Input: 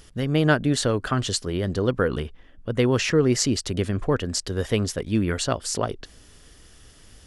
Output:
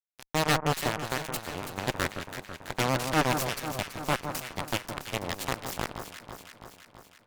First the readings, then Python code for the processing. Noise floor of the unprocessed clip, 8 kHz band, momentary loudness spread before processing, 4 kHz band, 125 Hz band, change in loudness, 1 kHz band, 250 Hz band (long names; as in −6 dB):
−51 dBFS, −7.5 dB, 8 LU, −4.5 dB, −10.0 dB, −7.0 dB, +1.5 dB, −11.0 dB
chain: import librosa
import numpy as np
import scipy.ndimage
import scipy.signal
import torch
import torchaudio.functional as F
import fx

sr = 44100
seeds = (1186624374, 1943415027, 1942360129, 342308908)

y = scipy.signal.sosfilt(scipy.signal.butter(2, 200.0, 'highpass', fs=sr, output='sos'), x)
y = fx.cheby_harmonics(y, sr, harmonics=(3, 6, 7, 8), levels_db=(-10, -20, -26, -29), full_scale_db=-5.0)
y = fx.fuzz(y, sr, gain_db=35.0, gate_db=-34.0)
y = fx.echo_alternate(y, sr, ms=165, hz=1500.0, feedback_pct=79, wet_db=-7.0)
y = F.gain(torch.from_numpy(y), -3.5).numpy()